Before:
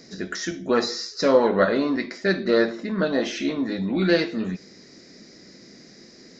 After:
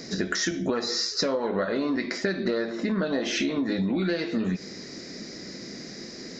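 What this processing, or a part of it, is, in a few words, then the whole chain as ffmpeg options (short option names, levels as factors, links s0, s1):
serial compression, peaks first: -af "acompressor=threshold=0.0447:ratio=6,acompressor=threshold=0.0251:ratio=3,volume=2.51"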